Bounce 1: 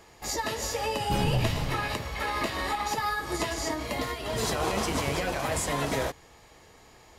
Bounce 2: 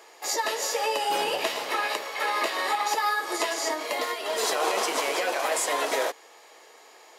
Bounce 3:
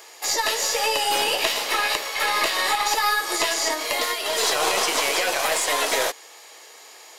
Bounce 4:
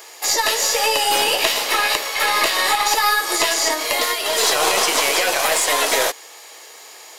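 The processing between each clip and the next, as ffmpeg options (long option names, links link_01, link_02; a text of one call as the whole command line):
ffmpeg -i in.wav -af "highpass=frequency=390:width=0.5412,highpass=frequency=390:width=1.3066,volume=4dB" out.wav
ffmpeg -i in.wav -filter_complex "[0:a]acrossover=split=4600[link_01][link_02];[link_02]acompressor=threshold=-36dB:ratio=4:attack=1:release=60[link_03];[link_01][link_03]amix=inputs=2:normalize=0,highshelf=frequency=2300:gain=11,aeval=exprs='0.473*(cos(1*acos(clip(val(0)/0.473,-1,1)))-cos(1*PI/2))+0.0335*(cos(4*acos(clip(val(0)/0.473,-1,1)))-cos(4*PI/2))':channel_layout=same,volume=1dB" out.wav
ffmpeg -i in.wav -af "acrusher=bits=10:mix=0:aa=0.000001,highshelf=frequency=9800:gain=4,volume=4dB" out.wav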